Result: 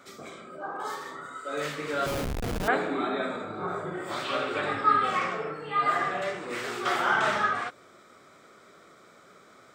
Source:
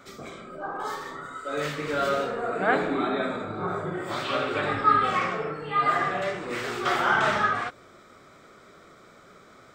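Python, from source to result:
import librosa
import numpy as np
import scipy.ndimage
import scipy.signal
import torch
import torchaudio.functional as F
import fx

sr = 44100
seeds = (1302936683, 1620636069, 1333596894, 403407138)

y = fx.highpass(x, sr, hz=180.0, slope=6)
y = fx.peak_eq(y, sr, hz=10000.0, db=4.0, octaves=0.83)
y = fx.schmitt(y, sr, flips_db=-25.0, at=(2.06, 2.68))
y = y * 10.0 ** (-2.0 / 20.0)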